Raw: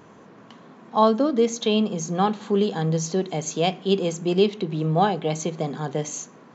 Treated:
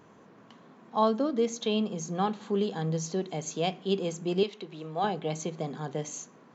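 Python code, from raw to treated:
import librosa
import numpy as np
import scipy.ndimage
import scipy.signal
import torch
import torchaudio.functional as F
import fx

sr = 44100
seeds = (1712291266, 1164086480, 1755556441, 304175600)

y = fx.highpass(x, sr, hz=660.0, slope=6, at=(4.43, 5.04))
y = y * librosa.db_to_amplitude(-7.0)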